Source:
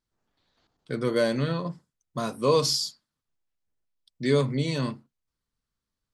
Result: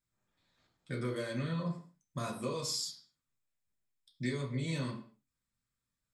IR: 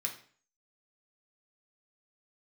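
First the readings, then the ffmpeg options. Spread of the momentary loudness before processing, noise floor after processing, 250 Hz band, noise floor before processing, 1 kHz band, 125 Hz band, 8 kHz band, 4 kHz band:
13 LU, below −85 dBFS, −9.0 dB, below −85 dBFS, −12.0 dB, −7.5 dB, −7.5 dB, −10.5 dB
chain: -filter_complex "[0:a]acompressor=threshold=-28dB:ratio=10[link_01];[1:a]atrim=start_sample=2205,afade=type=out:start_time=0.31:duration=0.01,atrim=end_sample=14112[link_02];[link_01][link_02]afir=irnorm=-1:irlink=0,volume=-3.5dB"

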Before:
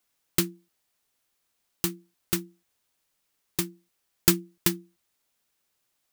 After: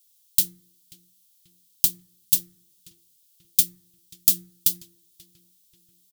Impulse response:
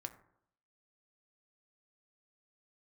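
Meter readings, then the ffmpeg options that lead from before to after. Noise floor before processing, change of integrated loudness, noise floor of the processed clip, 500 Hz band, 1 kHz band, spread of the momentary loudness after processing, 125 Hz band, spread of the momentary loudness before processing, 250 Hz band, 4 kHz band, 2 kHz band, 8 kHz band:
−76 dBFS, +6.0 dB, −63 dBFS, below −20 dB, below −20 dB, 4 LU, −10.5 dB, 11 LU, −14.5 dB, +2.0 dB, −12.0 dB, +5.5 dB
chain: -filter_complex "[0:a]firequalizer=gain_entry='entry(140,0);entry(210,-13);entry(410,-21);entry(900,-21);entry(1500,-19);entry(3300,7);entry(13000,14)':delay=0.05:min_phase=1,alimiter=limit=-3dB:level=0:latency=1:release=122,asplit=2[link_01][link_02];[link_02]adelay=536,lowpass=frequency=2100:poles=1,volume=-17.5dB,asplit=2[link_03][link_04];[link_04]adelay=536,lowpass=frequency=2100:poles=1,volume=0.51,asplit=2[link_05][link_06];[link_06]adelay=536,lowpass=frequency=2100:poles=1,volume=0.51,asplit=2[link_07][link_08];[link_08]adelay=536,lowpass=frequency=2100:poles=1,volume=0.51[link_09];[link_01][link_03][link_05][link_07][link_09]amix=inputs=5:normalize=0,asplit=2[link_10][link_11];[1:a]atrim=start_sample=2205,lowshelf=frequency=200:gain=-6[link_12];[link_11][link_12]afir=irnorm=-1:irlink=0,volume=4.5dB[link_13];[link_10][link_13]amix=inputs=2:normalize=0,volume=-4.5dB"

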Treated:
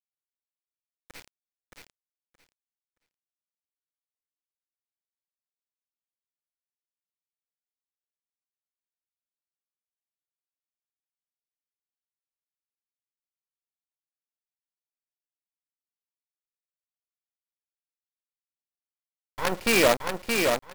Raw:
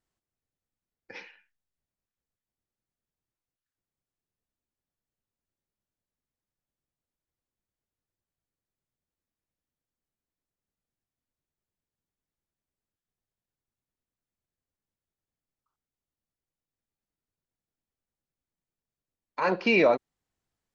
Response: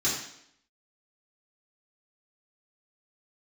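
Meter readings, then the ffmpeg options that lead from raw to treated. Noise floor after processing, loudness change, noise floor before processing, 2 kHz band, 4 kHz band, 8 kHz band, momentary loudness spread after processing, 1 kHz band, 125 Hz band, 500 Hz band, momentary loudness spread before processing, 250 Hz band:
below −85 dBFS, +0.5 dB, below −85 dBFS, +3.0 dB, +9.0 dB, can't be measured, 10 LU, +1.5 dB, +3.0 dB, +1.0 dB, 10 LU, +0.5 dB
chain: -af "acrusher=bits=4:dc=4:mix=0:aa=0.000001,aecho=1:1:622|1244|1866:0.631|0.107|0.0182"

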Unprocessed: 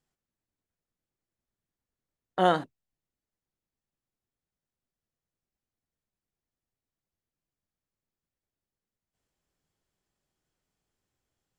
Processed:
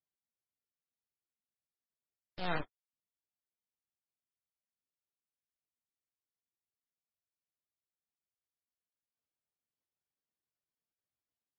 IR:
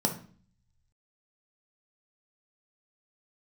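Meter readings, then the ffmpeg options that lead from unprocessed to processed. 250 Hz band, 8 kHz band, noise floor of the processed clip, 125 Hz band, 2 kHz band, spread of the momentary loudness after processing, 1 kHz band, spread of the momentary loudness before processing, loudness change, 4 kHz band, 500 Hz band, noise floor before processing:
−12.5 dB, can't be measured, below −85 dBFS, −8.5 dB, −6.0 dB, 15 LU, −15.0 dB, 10 LU, −13.0 dB, −9.0 dB, −16.0 dB, below −85 dBFS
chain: -af "areverse,acompressor=threshold=-30dB:ratio=6,areverse,aeval=exprs='max(val(0),0)':channel_layout=same,highpass=frequency=65:width=0.5412,highpass=frequency=65:width=1.3066,aeval=exprs='0.0631*(cos(1*acos(clip(val(0)/0.0631,-1,1)))-cos(1*PI/2))+0.02*(cos(4*acos(clip(val(0)/0.0631,-1,1)))-cos(4*PI/2))+0.00251*(cos(5*acos(clip(val(0)/0.0631,-1,1)))-cos(5*PI/2))+0.00794*(cos(7*acos(clip(val(0)/0.0631,-1,1)))-cos(7*PI/2))+0.0141*(cos(8*acos(clip(val(0)/0.0631,-1,1)))-cos(8*PI/2))':channel_layout=same,flanger=delay=1.4:depth=3.1:regen=50:speed=1.8:shape=sinusoidal,volume=2dB" -ar 22050 -c:a libmp3lame -b:a 16k

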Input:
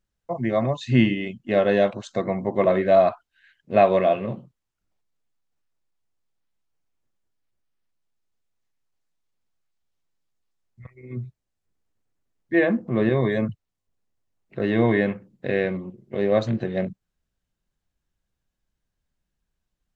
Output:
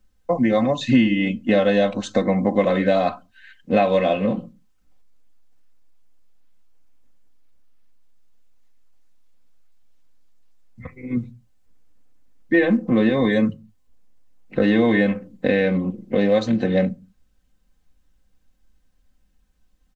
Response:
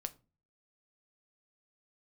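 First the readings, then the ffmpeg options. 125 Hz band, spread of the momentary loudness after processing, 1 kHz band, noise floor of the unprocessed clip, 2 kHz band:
+0.5 dB, 9 LU, 0.0 dB, −82 dBFS, +3.5 dB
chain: -filter_complex "[0:a]aecho=1:1:3.9:0.74,acrossover=split=80|2900[link_01][link_02][link_03];[link_01]acompressor=threshold=-59dB:ratio=4[link_04];[link_02]acompressor=threshold=-26dB:ratio=4[link_05];[link_03]acompressor=threshold=-41dB:ratio=4[link_06];[link_04][link_05][link_06]amix=inputs=3:normalize=0,asplit=2[link_07][link_08];[1:a]atrim=start_sample=2205,afade=type=out:start_time=0.26:duration=0.01,atrim=end_sample=11907,lowshelf=frequency=390:gain=9.5[link_09];[link_08][link_09]afir=irnorm=-1:irlink=0,volume=-3dB[link_10];[link_07][link_10]amix=inputs=2:normalize=0,volume=4.5dB"

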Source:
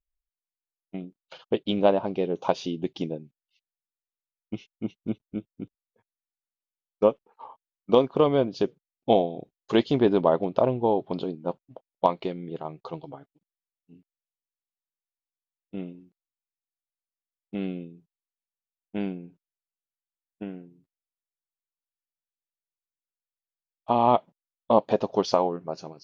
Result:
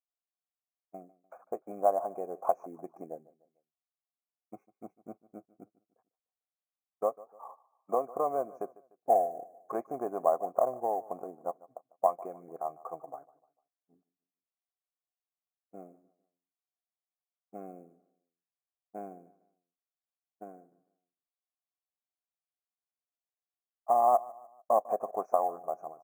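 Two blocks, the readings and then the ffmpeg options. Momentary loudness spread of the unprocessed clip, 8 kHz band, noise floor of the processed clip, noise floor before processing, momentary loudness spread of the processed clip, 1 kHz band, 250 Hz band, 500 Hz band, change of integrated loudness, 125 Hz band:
18 LU, can't be measured, below −85 dBFS, below −85 dBFS, 23 LU, −2.0 dB, −18.5 dB, −7.0 dB, −6.0 dB, −23.5 dB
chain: -filter_complex "[0:a]asplit=2[link_01][link_02];[link_02]acompressor=threshold=-27dB:ratio=10,volume=1.5dB[link_03];[link_01][link_03]amix=inputs=2:normalize=0,asplit=3[link_04][link_05][link_06];[link_04]bandpass=frequency=730:width_type=q:width=8,volume=0dB[link_07];[link_05]bandpass=frequency=1090:width_type=q:width=8,volume=-6dB[link_08];[link_06]bandpass=frequency=2440:width_type=q:width=8,volume=-9dB[link_09];[link_07][link_08][link_09]amix=inputs=3:normalize=0,acrusher=bits=7:mode=log:mix=0:aa=0.000001,asuperstop=centerf=3600:order=12:qfactor=0.83,aecho=1:1:149|298|447:0.0944|0.0397|0.0167"

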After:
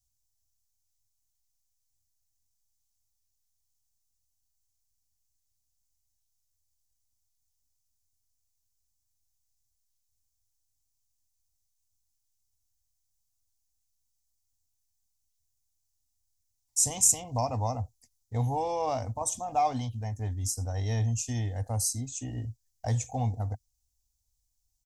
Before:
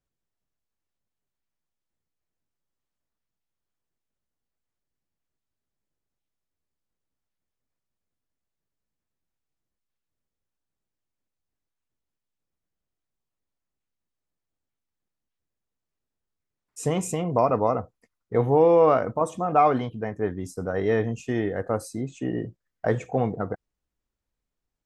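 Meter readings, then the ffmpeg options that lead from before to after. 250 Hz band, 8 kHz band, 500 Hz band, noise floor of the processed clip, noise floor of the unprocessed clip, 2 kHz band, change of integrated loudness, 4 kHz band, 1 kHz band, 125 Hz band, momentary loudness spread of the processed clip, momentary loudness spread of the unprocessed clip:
−11.0 dB, +14.0 dB, −14.5 dB, −78 dBFS, below −85 dBFS, −12.0 dB, −5.0 dB, +4.0 dB, −6.5 dB, +1.0 dB, 12 LU, 13 LU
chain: -af "firequalizer=gain_entry='entry(110,0);entry(160,-29);entry(240,-12);entry(360,-29);entry(810,-9);entry(1300,-28);entry(1900,-18);entry(4100,-1);entry(6000,9);entry(8900,6)':delay=0.05:min_phase=1,volume=6.5dB"

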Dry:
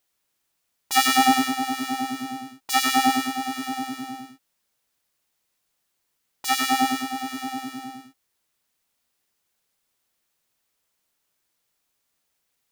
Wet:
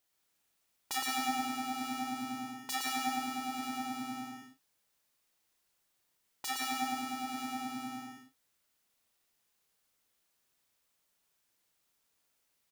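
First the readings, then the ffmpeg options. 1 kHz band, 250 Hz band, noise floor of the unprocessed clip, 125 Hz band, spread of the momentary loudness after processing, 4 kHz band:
−13.0 dB, −12.0 dB, −76 dBFS, −9.5 dB, 10 LU, −13.5 dB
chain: -filter_complex "[0:a]acompressor=threshold=-33dB:ratio=2.5,asplit=2[link_01][link_02];[link_02]adelay=35,volume=-9dB[link_03];[link_01][link_03]amix=inputs=2:normalize=0,asplit=2[link_04][link_05];[link_05]aecho=0:1:116|175:0.668|0.501[link_06];[link_04][link_06]amix=inputs=2:normalize=0,volume=-5dB"

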